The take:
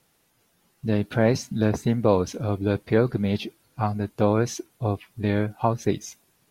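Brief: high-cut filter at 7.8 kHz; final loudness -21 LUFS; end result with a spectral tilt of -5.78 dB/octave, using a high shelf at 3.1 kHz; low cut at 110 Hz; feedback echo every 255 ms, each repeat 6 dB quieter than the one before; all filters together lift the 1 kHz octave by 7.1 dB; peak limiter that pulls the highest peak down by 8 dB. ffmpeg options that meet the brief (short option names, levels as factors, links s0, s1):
-af "highpass=110,lowpass=7800,equalizer=f=1000:t=o:g=8.5,highshelf=f=3100:g=4.5,alimiter=limit=0.299:level=0:latency=1,aecho=1:1:255|510|765|1020|1275|1530:0.501|0.251|0.125|0.0626|0.0313|0.0157,volume=1.5"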